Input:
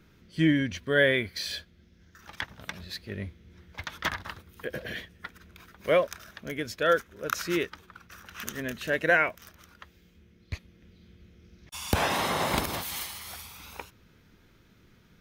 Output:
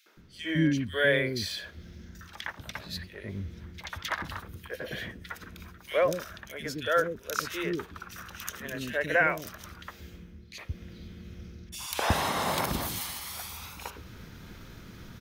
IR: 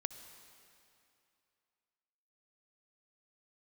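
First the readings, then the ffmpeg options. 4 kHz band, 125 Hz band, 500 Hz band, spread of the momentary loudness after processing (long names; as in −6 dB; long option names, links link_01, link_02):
−1.0 dB, +0.5 dB, −2.0 dB, 21 LU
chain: -filter_complex "[0:a]areverse,acompressor=mode=upward:threshold=-32dB:ratio=2.5,areverse,acrossover=split=390|2400[link_01][link_02][link_03];[link_02]adelay=60[link_04];[link_01]adelay=170[link_05];[link_05][link_04][link_03]amix=inputs=3:normalize=0"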